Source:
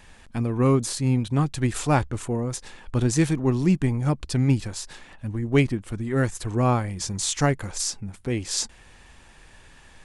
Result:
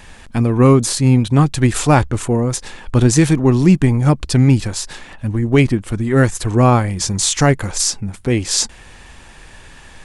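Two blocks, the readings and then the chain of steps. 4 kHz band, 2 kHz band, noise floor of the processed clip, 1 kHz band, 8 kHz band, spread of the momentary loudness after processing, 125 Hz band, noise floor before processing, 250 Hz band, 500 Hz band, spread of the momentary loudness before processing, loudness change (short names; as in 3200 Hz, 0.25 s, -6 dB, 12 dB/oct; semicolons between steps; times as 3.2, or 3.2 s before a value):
+9.5 dB, +9.0 dB, -41 dBFS, +9.0 dB, +10.0 dB, 10 LU, +9.5 dB, -51 dBFS, +9.5 dB, +9.0 dB, 10 LU, +9.5 dB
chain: maximiser +11 dB; gain -1 dB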